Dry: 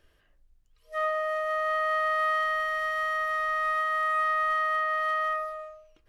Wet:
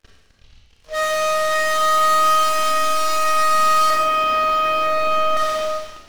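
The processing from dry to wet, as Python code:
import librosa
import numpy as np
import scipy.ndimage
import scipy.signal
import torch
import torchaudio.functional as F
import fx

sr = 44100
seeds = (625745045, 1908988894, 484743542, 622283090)

y = fx.cvsd(x, sr, bps=32000)
y = fx.cheby1_lowpass(y, sr, hz=660.0, order=2, at=(3.9, 5.37))
y = fx.leveller(y, sr, passes=5)
y = fx.rev_schroeder(y, sr, rt60_s=1.1, comb_ms=28, drr_db=-2.5)
y = y * 10.0 ** (-1.5 / 20.0)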